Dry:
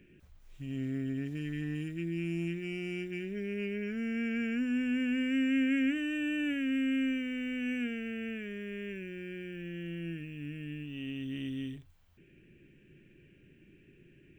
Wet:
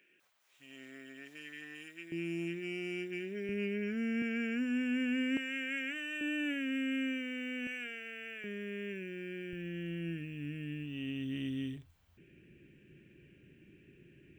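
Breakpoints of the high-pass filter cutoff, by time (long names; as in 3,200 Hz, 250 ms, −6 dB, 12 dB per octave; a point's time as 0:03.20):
760 Hz
from 0:02.12 250 Hz
from 0:03.49 76 Hz
from 0:04.22 230 Hz
from 0:05.37 670 Hz
from 0:06.21 320 Hz
from 0:07.67 700 Hz
from 0:08.44 170 Hz
from 0:09.53 45 Hz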